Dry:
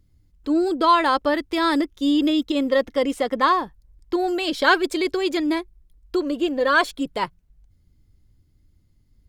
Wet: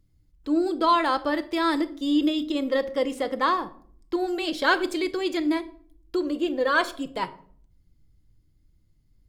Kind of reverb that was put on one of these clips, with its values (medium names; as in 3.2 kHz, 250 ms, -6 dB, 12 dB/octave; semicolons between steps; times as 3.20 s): simulated room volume 640 m³, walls furnished, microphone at 0.67 m; trim -4.5 dB